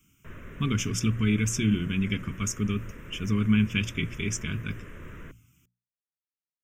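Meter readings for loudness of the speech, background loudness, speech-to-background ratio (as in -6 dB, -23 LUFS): -28.0 LUFS, -45.5 LUFS, 17.5 dB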